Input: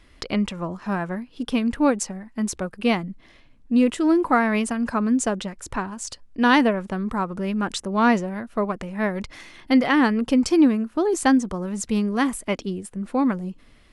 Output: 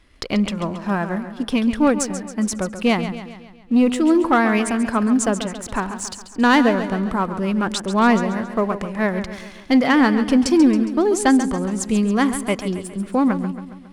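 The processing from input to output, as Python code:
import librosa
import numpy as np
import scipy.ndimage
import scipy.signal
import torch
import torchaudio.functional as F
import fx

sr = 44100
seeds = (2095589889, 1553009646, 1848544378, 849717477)

p1 = fx.leveller(x, sr, passes=1)
y = p1 + fx.echo_feedback(p1, sr, ms=137, feedback_pct=53, wet_db=-11.0, dry=0)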